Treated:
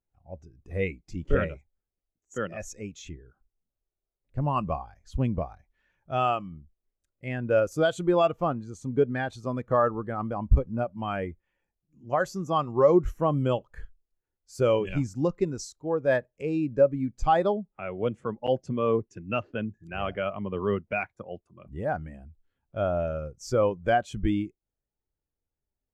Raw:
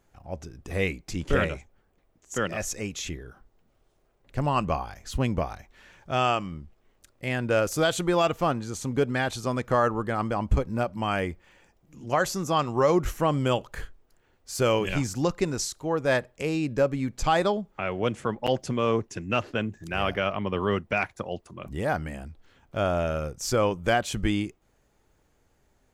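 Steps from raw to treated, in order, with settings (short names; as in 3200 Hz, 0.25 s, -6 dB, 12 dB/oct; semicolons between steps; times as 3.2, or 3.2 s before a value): spectral expander 1.5:1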